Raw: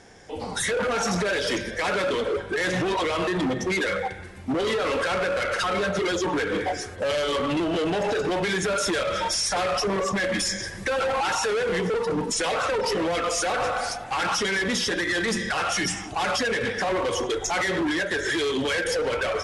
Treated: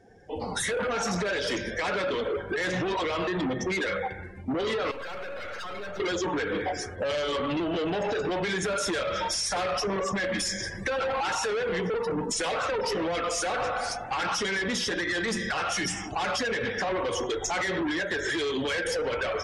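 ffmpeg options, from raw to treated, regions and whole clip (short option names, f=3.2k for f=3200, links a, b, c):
-filter_complex "[0:a]asettb=1/sr,asplit=3[a][b][c];[a]atrim=end=4.914[d];[b]atrim=start=4.91:end=6,asetpts=PTS-STARTPTS,afade=t=in:d=0.004:c=qsin,afade=t=out:st=1.086:d=0.004:c=qsin,equalizer=f=160:t=o:w=1.5:g=-9.5,aeval=exprs='(tanh(63.1*val(0)+0.75)-tanh(0.75))/63.1':c=same[e];[c]atrim=start=5.996[f];[d][e]acrossfade=d=0.004:c1=hsin:c2=qsin[g];[g][f]acrossfade=d=0.004:c1=qsin:c2=hsin,afftdn=nr=19:nf=-45,acompressor=threshold=-27dB:ratio=6"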